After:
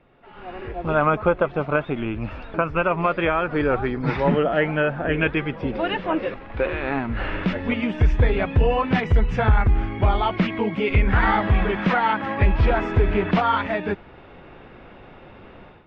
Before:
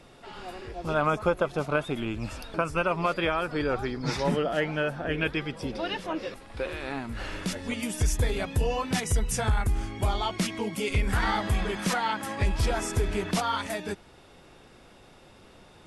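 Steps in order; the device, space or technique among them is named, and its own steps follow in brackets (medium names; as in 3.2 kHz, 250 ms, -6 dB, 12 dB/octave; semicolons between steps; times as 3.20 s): action camera in a waterproof case (low-pass 2.7 kHz 24 dB/octave; level rider gain up to 15 dB; trim -5.5 dB; AAC 64 kbps 32 kHz)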